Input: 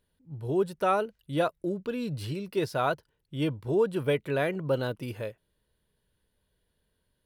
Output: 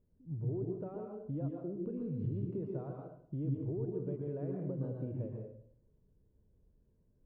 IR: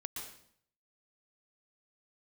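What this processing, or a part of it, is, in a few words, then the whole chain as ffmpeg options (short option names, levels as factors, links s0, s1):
television next door: -filter_complex "[0:a]acompressor=threshold=0.01:ratio=6,lowpass=390[s0];[1:a]atrim=start_sample=2205[s1];[s0][s1]afir=irnorm=-1:irlink=0,volume=2.37"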